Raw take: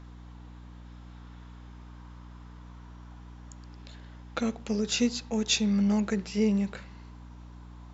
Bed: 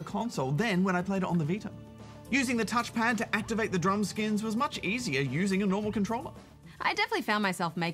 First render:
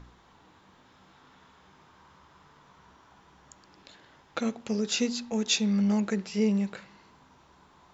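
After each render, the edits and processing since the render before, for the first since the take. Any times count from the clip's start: de-hum 60 Hz, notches 5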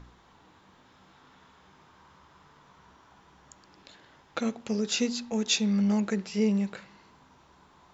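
no audible change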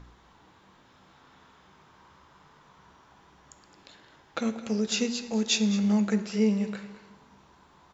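delay 213 ms -15 dB; plate-style reverb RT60 1.4 s, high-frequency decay 0.75×, DRR 11 dB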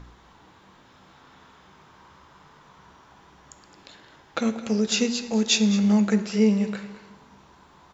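trim +4.5 dB

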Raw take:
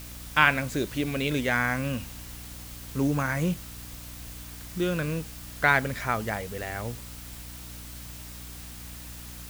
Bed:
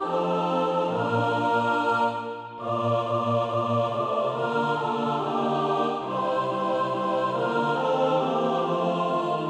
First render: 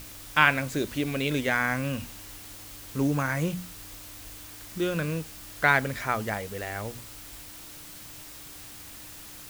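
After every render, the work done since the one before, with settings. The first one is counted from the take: hum notches 60/120/180/240 Hz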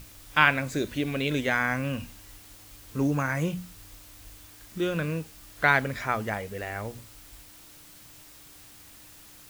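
noise print and reduce 6 dB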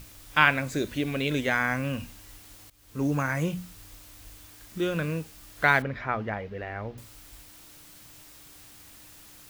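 2.70–3.13 s: fade in, from -19.5 dB; 5.82–6.98 s: distance through air 280 m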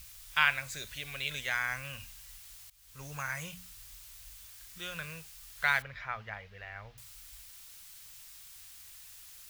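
amplifier tone stack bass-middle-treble 10-0-10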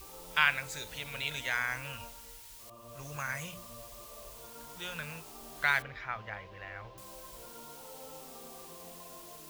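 add bed -27 dB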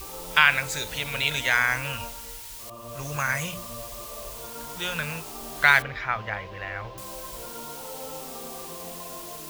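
trim +10.5 dB; peak limiter -3 dBFS, peak gain reduction 3 dB

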